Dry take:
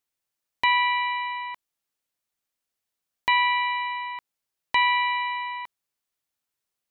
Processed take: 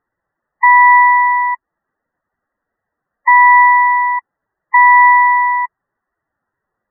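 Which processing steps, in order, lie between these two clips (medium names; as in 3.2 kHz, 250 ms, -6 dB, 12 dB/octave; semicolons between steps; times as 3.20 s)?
spectral gate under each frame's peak -10 dB strong; brick-wall FIR low-pass 2 kHz; loudness maximiser +20 dB; trim -1 dB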